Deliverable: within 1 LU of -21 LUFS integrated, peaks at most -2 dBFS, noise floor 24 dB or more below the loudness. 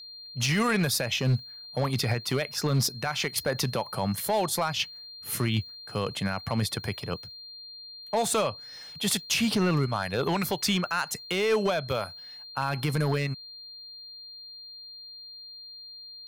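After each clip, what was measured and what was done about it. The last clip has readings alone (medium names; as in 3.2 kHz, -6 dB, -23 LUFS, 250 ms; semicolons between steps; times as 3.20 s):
clipped samples 0.8%; clipping level -19.0 dBFS; steady tone 4.2 kHz; tone level -42 dBFS; loudness -28.0 LUFS; peak level -19.0 dBFS; loudness target -21.0 LUFS
-> clip repair -19 dBFS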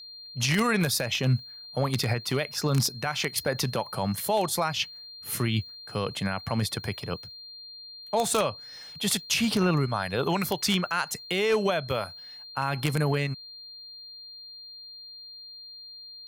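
clipped samples 0.0%; steady tone 4.2 kHz; tone level -42 dBFS
-> band-stop 4.2 kHz, Q 30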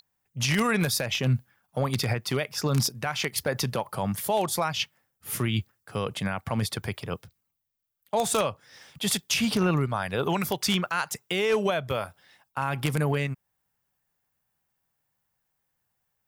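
steady tone not found; loudness -27.5 LUFS; peak level -10.0 dBFS; loudness target -21.0 LUFS
-> trim +6.5 dB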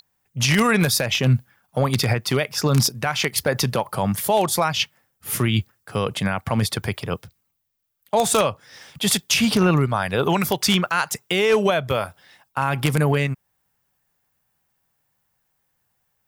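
loudness -21.0 LUFS; peak level -3.5 dBFS; noise floor -72 dBFS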